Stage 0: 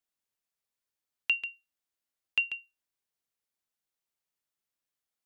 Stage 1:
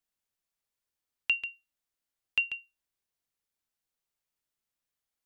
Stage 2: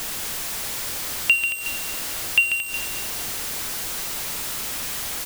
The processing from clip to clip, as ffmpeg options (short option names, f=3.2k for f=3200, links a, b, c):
-af "lowshelf=f=88:g=8"
-af "aeval=exprs='val(0)+0.5*0.0299*sgn(val(0))':c=same,aecho=1:1:225|450|675|900:0.335|0.124|0.0459|0.017,volume=8.5dB"